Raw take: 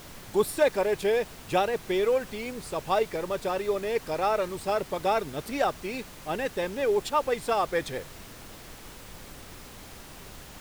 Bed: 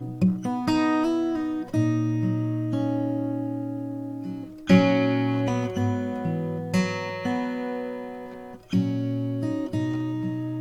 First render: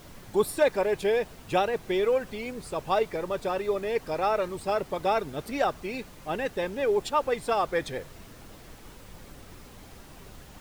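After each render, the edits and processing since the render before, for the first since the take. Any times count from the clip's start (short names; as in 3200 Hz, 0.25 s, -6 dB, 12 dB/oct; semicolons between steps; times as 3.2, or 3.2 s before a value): denoiser 6 dB, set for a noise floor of -46 dBFS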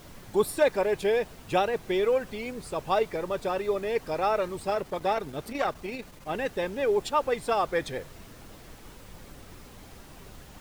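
4.7–6.35 core saturation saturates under 880 Hz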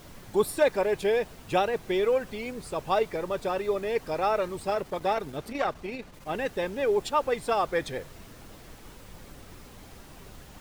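5.37–6.13 LPF 9300 Hz -> 4000 Hz 6 dB/oct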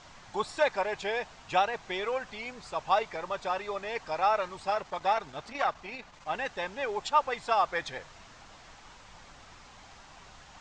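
steep low-pass 7400 Hz 48 dB/oct; resonant low shelf 590 Hz -9 dB, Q 1.5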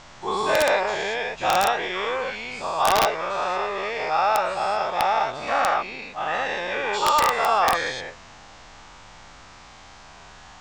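spectral dilation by 0.24 s; wrapped overs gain 10 dB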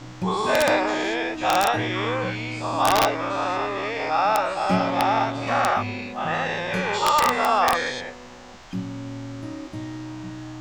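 add bed -7 dB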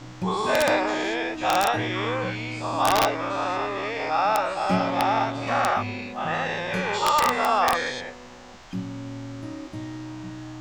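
gain -1.5 dB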